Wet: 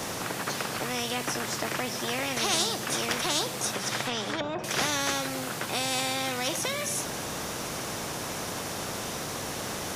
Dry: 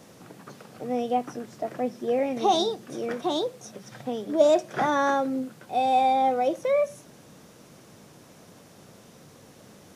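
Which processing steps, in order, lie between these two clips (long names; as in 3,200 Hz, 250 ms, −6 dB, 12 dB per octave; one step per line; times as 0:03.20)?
dynamic equaliser 1,200 Hz, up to −5 dB, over −37 dBFS, Q 0.99
0:03.73–0:04.64: treble cut that deepens with the level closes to 710 Hz, closed at −17 dBFS
every bin compressed towards the loudest bin 4 to 1
level −1.5 dB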